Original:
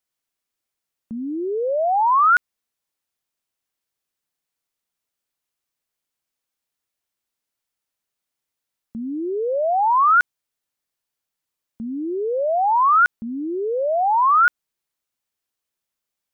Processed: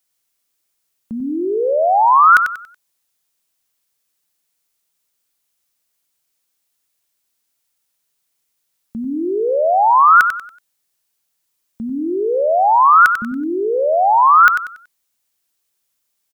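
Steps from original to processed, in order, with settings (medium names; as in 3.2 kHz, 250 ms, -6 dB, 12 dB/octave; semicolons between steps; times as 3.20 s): treble shelf 3.8 kHz +8.5 dB; on a send: feedback delay 94 ms, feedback 31%, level -8 dB; on the sum: trim +4.5 dB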